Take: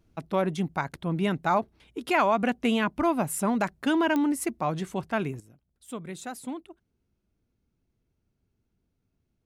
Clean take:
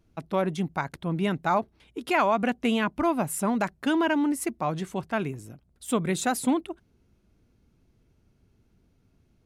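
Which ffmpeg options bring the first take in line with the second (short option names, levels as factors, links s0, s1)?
-af "adeclick=t=4,asetnsamples=n=441:p=0,asendcmd='5.4 volume volume 11.5dB',volume=1"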